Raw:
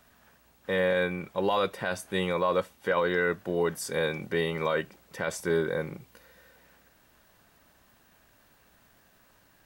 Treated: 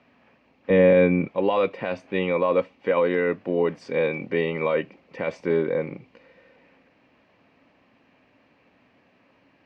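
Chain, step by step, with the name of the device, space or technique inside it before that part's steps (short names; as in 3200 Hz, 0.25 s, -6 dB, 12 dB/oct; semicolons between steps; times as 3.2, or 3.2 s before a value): guitar cabinet (speaker cabinet 110–3900 Hz, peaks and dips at 270 Hz +9 dB, 510 Hz +5 dB, 1500 Hz -8 dB, 2400 Hz +7 dB, 3600 Hz -8 dB); 0.7–1.28 low shelf 390 Hz +12 dB; gain +2 dB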